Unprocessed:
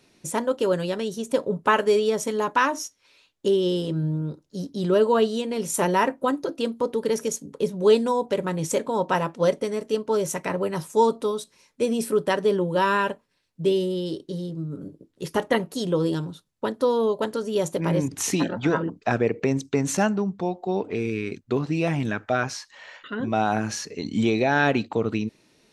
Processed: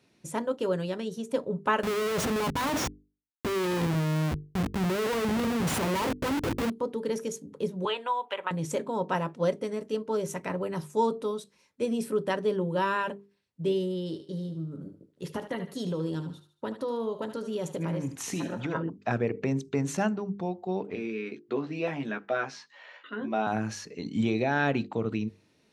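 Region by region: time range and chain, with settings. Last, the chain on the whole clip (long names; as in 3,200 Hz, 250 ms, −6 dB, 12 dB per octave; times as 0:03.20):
0:01.83–0:06.70: transient designer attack +3 dB, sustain +9 dB + comparator with hysteresis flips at −28 dBFS
0:07.85–0:08.51: high-pass with resonance 940 Hz, resonance Q 1.7 + high shelf with overshoot 4,000 Hz −9 dB, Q 3 + multiband upward and downward compressor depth 70%
0:13.99–0:18.75: downward compressor 5 to 1, threshold −22 dBFS + feedback echo with a high-pass in the loop 75 ms, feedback 41%, high-pass 640 Hz, level −10 dB
0:20.95–0:23.47: three-way crossover with the lows and the highs turned down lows −24 dB, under 210 Hz, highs −15 dB, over 5,800 Hz + double-tracking delay 14 ms −5.5 dB
whole clip: high-pass filter 62 Hz; bass and treble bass +4 dB, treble −4 dB; mains-hum notches 50/100/150/200/250/300/350/400/450 Hz; level −6 dB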